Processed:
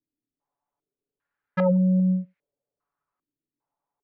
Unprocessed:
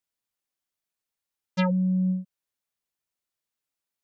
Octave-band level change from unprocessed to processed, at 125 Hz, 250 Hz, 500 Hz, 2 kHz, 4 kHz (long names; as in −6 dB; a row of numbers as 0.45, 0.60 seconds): +3.0 dB, +3.0 dB, +9.0 dB, −1.0 dB, below −10 dB